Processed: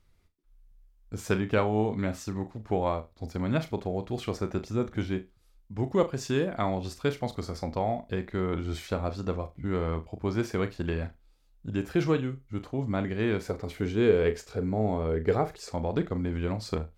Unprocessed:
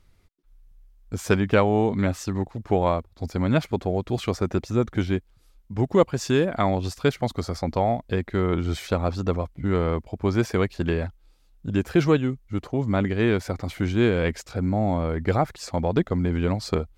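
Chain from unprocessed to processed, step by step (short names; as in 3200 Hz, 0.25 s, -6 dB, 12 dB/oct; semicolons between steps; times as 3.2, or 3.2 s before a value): 13.49–15.74 bell 430 Hz +14 dB 0.23 oct; flutter echo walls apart 6.4 m, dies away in 0.21 s; gain -6.5 dB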